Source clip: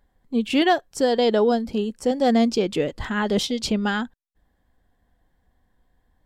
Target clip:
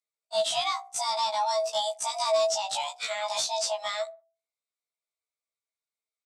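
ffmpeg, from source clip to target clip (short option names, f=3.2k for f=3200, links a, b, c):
-filter_complex "[0:a]aemphasis=mode=production:type=bsi,agate=range=-29dB:threshold=-33dB:ratio=16:detection=peak,bandreject=f=60:t=h:w=6,bandreject=f=120:t=h:w=6,bandreject=f=180:t=h:w=6,bandreject=f=240:t=h:w=6,bandreject=f=300:t=h:w=6,bandreject=f=360:t=h:w=6,acrossover=split=710[a][b];[a]alimiter=limit=-22dB:level=0:latency=1:release=175[c];[b]acompressor=threshold=-36dB:ratio=12[d];[c][d]amix=inputs=2:normalize=0,afreqshift=420,aexciter=amount=6.2:drive=3.4:freq=2.3k,asoftclip=type=tanh:threshold=-18dB,highpass=100,equalizer=f=210:t=q:w=4:g=3,equalizer=f=380:t=q:w=4:g=-6,equalizer=f=650:t=q:w=4:g=6,equalizer=f=1.3k:t=q:w=4:g=4,lowpass=f=8.5k:w=0.5412,lowpass=f=8.5k:w=1.3066,asplit=2[e][f];[f]adelay=61,lowpass=f=1.5k:p=1,volume=-23dB,asplit=2[g][h];[h]adelay=61,lowpass=f=1.5k:p=1,volume=0.44,asplit=2[i][j];[j]adelay=61,lowpass=f=1.5k:p=1,volume=0.44[k];[g][i][k]amix=inputs=3:normalize=0[l];[e][l]amix=inputs=2:normalize=0,afftfilt=real='re*1.73*eq(mod(b,3),0)':imag='im*1.73*eq(mod(b,3),0)':win_size=2048:overlap=0.75,volume=-1.5dB"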